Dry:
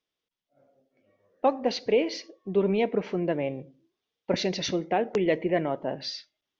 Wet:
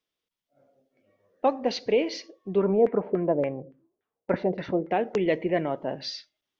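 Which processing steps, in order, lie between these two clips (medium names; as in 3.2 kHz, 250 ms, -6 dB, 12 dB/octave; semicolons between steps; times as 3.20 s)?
2.58–4.91 s: LFO low-pass saw down 3.5 Hz 450–1900 Hz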